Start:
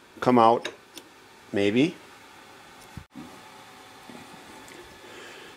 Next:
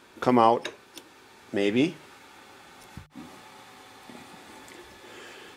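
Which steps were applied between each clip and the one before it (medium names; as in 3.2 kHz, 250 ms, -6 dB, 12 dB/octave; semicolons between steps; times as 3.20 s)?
hum notches 50/100/150 Hz; trim -1.5 dB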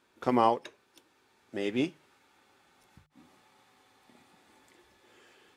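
upward expansion 1.5:1, over -38 dBFS; trim -4 dB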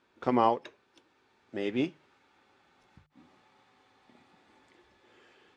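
distance through air 100 m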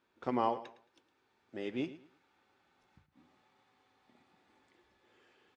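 feedback delay 110 ms, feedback 26%, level -15.5 dB; trim -7 dB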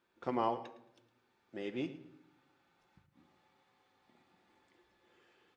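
simulated room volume 2400 m³, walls furnished, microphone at 0.82 m; trim -1.5 dB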